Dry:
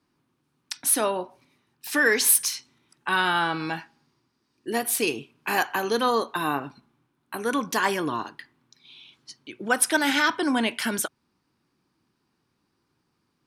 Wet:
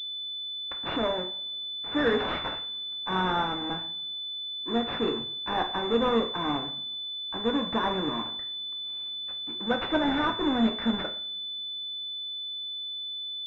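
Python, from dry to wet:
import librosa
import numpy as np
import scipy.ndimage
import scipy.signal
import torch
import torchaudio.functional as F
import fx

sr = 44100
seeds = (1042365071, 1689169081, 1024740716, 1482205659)

y = fx.halfwave_hold(x, sr)
y = fx.rev_double_slope(y, sr, seeds[0], early_s=0.45, late_s=1.9, knee_db=-28, drr_db=3.5)
y = fx.pwm(y, sr, carrier_hz=3500.0)
y = F.gain(torch.from_numpy(y), -8.0).numpy()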